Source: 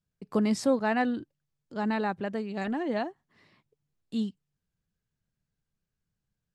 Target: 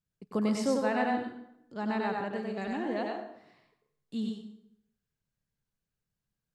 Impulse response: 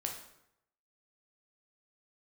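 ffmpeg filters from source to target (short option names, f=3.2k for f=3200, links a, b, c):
-filter_complex "[0:a]asplit=2[a][b];[1:a]atrim=start_sample=2205,lowshelf=f=140:g=-10,adelay=95[c];[b][c]afir=irnorm=-1:irlink=0,volume=-1dB[d];[a][d]amix=inputs=2:normalize=0,volume=-4.5dB"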